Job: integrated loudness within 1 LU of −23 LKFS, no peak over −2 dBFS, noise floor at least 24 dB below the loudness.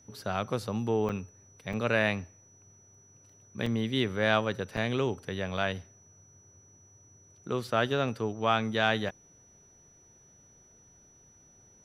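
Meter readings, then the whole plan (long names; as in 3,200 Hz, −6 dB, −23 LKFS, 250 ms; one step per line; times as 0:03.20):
number of dropouts 6; longest dropout 4.1 ms; interfering tone 5,900 Hz; level of the tone −58 dBFS; integrated loudness −30.0 LKFS; sample peak −9.5 dBFS; target loudness −23.0 LKFS
→ repair the gap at 0:01.09/0:01.73/0:03.66/0:04.77/0:05.57/0:09.09, 4.1 ms
notch filter 5,900 Hz, Q 30
level +7 dB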